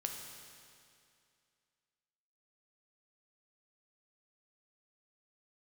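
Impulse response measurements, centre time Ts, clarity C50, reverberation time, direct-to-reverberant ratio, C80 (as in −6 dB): 65 ms, 4.0 dB, 2.4 s, 2.5 dB, 5.5 dB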